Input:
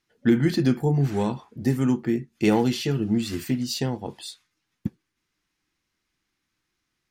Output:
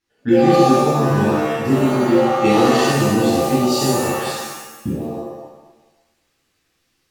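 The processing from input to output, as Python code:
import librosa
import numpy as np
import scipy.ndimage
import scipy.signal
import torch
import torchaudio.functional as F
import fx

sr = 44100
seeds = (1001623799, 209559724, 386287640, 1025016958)

y = fx.dmg_buzz(x, sr, base_hz=120.0, harmonics=11, level_db=-36.0, tilt_db=-1, odd_only=False, at=(1.61, 2.29), fade=0.02)
y = fx.rider(y, sr, range_db=10, speed_s=2.0)
y = fx.rev_shimmer(y, sr, seeds[0], rt60_s=1.0, semitones=7, shimmer_db=-2, drr_db=-8.5)
y = y * 10.0 ** (-4.5 / 20.0)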